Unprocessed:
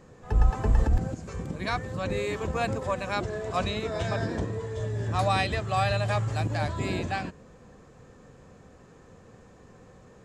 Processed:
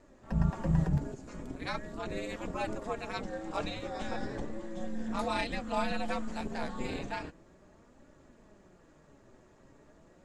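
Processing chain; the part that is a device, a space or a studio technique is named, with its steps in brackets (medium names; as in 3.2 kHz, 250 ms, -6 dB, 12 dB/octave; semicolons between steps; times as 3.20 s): alien voice (ring modulator 110 Hz; flange 0.37 Hz, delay 3.3 ms, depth 4.9 ms, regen +62%)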